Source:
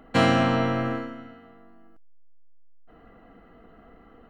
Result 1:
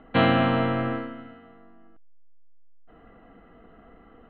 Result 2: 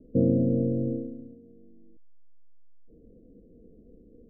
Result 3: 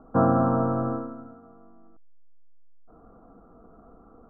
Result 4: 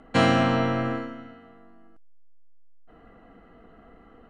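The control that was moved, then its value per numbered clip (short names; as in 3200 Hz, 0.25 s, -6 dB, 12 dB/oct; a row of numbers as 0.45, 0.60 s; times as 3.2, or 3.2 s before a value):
steep low-pass, frequency: 3900, 540, 1400, 11000 Hz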